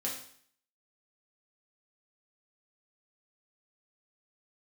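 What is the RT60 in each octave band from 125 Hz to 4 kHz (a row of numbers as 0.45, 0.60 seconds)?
0.60, 0.60, 0.55, 0.60, 0.60, 0.60 seconds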